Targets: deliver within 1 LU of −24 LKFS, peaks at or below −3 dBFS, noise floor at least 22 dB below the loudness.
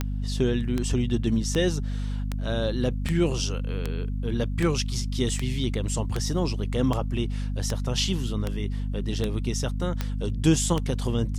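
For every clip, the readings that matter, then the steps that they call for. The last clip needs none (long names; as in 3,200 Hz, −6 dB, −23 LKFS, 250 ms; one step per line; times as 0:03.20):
number of clicks 15; mains hum 50 Hz; hum harmonics up to 250 Hz; level of the hum −26 dBFS; integrated loudness −27.0 LKFS; sample peak −8.5 dBFS; target loudness −24.0 LKFS
→ click removal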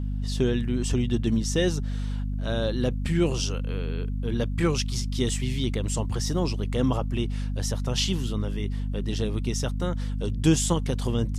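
number of clicks 0; mains hum 50 Hz; hum harmonics up to 250 Hz; level of the hum −26 dBFS
→ mains-hum notches 50/100/150/200/250 Hz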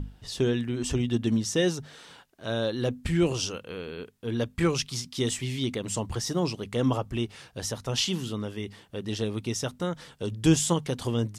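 mains hum none found; integrated loudness −29.0 LKFS; sample peak −9.5 dBFS; target loudness −24.0 LKFS
→ level +5 dB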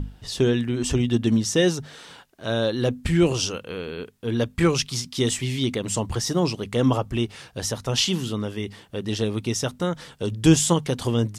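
integrated loudness −24.0 LKFS; sample peak −4.5 dBFS; background noise floor −52 dBFS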